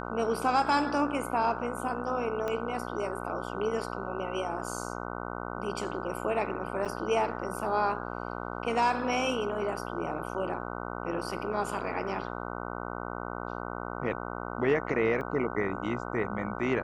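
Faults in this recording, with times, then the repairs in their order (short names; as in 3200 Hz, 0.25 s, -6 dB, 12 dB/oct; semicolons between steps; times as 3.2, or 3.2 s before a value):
buzz 60 Hz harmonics 25 -37 dBFS
2.48 pop -20 dBFS
6.85–6.86 gap 6.7 ms
15.21 gap 2.8 ms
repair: de-click; de-hum 60 Hz, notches 25; interpolate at 6.85, 6.7 ms; interpolate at 15.21, 2.8 ms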